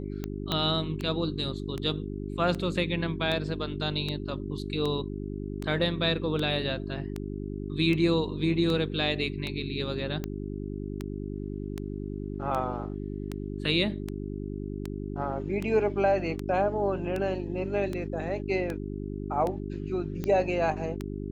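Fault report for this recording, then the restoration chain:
mains hum 50 Hz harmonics 8 −35 dBFS
scratch tick 78 rpm −19 dBFS
0:00.52: click −14 dBFS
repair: click removal
hum removal 50 Hz, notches 8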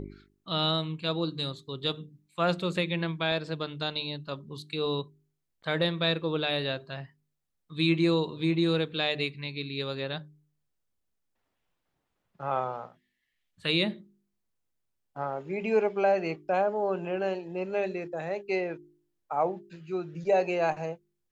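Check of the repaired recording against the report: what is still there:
0:00.52: click

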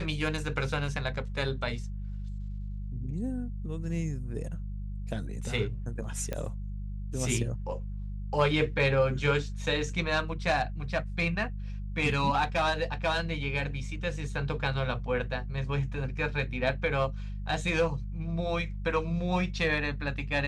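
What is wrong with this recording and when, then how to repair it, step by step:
mains hum 50 Hz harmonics 4 −36 dBFS
0:06.33: click −19 dBFS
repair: click removal
hum removal 50 Hz, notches 4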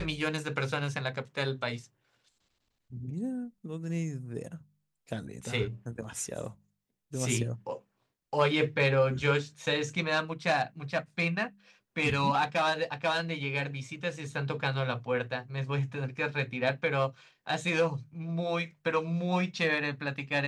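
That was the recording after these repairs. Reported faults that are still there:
none of them is left

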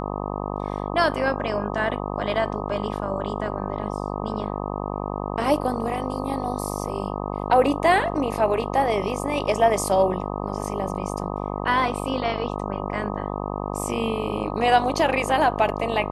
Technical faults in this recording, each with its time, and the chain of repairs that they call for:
mains buzz 50 Hz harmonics 25 −29 dBFS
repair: hum removal 50 Hz, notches 25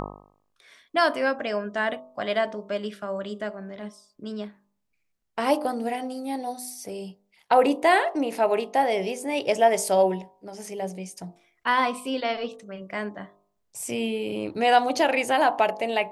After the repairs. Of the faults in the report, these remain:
none of them is left

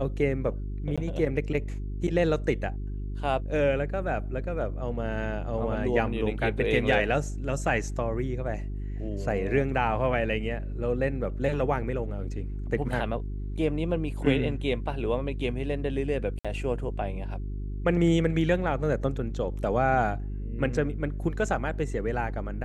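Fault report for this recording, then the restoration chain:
mains hum 50 Hz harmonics 8 −33 dBFS
0:00.96–0:00.98: drop-out 16 ms
0:16.39–0:16.45: drop-out 56 ms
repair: hum removal 50 Hz, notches 8
repair the gap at 0:00.96, 16 ms
repair the gap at 0:16.39, 56 ms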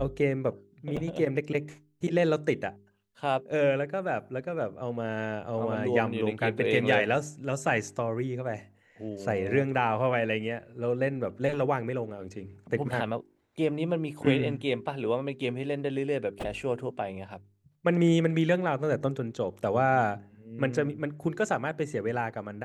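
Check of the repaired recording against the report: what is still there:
none of them is left

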